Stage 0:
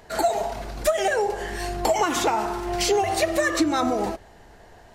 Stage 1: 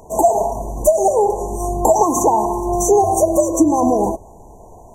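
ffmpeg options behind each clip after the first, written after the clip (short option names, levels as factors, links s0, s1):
-af "afftfilt=real='re*(1-between(b*sr/4096,1100,5800))':imag='im*(1-between(b*sr/4096,1100,5800))':win_size=4096:overlap=0.75,volume=2.66"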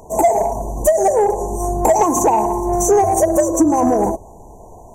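-af "acontrast=38,volume=0.631"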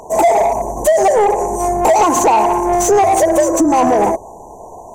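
-filter_complex "[0:a]asplit=2[s0][s1];[s1]highpass=f=720:p=1,volume=6.31,asoftclip=type=tanh:threshold=0.596[s2];[s0][s2]amix=inputs=2:normalize=0,lowpass=f=4100:p=1,volume=0.501"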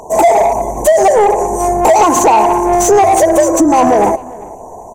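-filter_complex "[0:a]asplit=2[s0][s1];[s1]adelay=395,lowpass=f=2500:p=1,volume=0.0944,asplit=2[s2][s3];[s3]adelay=395,lowpass=f=2500:p=1,volume=0.22[s4];[s0][s2][s4]amix=inputs=3:normalize=0,volume=1.41"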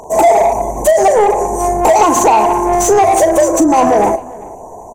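-filter_complex "[0:a]asplit=2[s0][s1];[s1]adelay=38,volume=0.251[s2];[s0][s2]amix=inputs=2:normalize=0,volume=0.891"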